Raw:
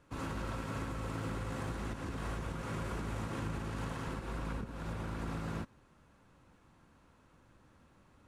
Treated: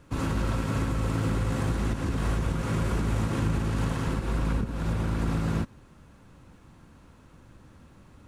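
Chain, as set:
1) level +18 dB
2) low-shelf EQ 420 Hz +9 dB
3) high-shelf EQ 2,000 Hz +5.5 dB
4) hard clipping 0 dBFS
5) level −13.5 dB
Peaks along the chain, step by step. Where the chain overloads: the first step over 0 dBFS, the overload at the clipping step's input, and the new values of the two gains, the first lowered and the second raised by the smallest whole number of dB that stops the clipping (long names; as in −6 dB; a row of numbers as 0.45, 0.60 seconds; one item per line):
−9.0, −2.5, −2.0, −2.0, −15.5 dBFS
no step passes full scale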